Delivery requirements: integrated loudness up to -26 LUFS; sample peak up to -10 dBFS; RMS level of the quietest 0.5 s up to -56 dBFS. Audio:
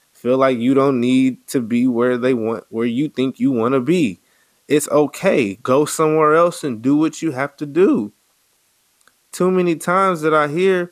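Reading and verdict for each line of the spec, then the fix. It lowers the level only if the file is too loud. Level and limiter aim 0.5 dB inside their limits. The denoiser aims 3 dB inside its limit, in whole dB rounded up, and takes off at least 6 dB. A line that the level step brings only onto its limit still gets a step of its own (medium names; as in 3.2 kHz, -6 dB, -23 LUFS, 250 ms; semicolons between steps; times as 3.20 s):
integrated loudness -17.0 LUFS: fail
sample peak -3.0 dBFS: fail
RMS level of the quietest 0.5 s -61 dBFS: pass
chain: trim -9.5 dB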